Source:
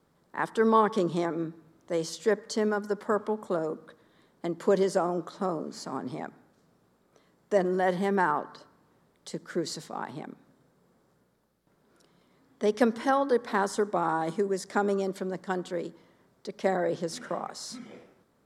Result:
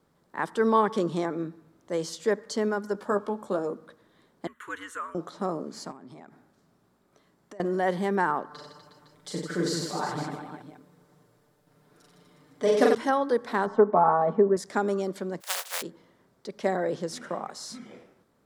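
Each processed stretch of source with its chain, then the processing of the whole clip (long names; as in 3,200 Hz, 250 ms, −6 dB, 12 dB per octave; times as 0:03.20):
0:02.93–0:03.70: Butterworth band-reject 2,000 Hz, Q 7.6 + double-tracking delay 15 ms −8 dB
0:04.47–0:05.15: high-pass with resonance 1,300 Hz, resonance Q 2.4 + phaser with its sweep stopped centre 2,100 Hz, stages 4 + frequency shifter −97 Hz
0:05.91–0:07.60: notch filter 490 Hz, Q 7.3 + downward compressor 16 to 1, threshold −42 dBFS
0:08.50–0:12.95: comb filter 6.7 ms, depth 68% + reverse bouncing-ball delay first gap 40 ms, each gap 1.3×, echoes 6, each echo −2 dB
0:13.66–0:14.57: low-pass filter 1,300 Hz + parametric band 780 Hz +7 dB 1.8 octaves + comb filter 4.6 ms, depth 82%
0:15.40–0:15.81: compressing power law on the bin magnitudes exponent 0.18 + Butterworth high-pass 490 Hz 48 dB per octave
whole clip: no processing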